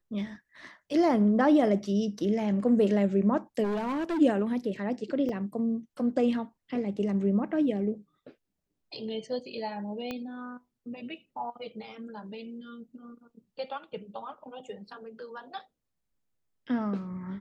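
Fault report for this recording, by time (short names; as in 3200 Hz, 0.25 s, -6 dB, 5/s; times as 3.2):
3.63–4.19 clipped -27 dBFS
5.29 gap 3.6 ms
10.11 pop -21 dBFS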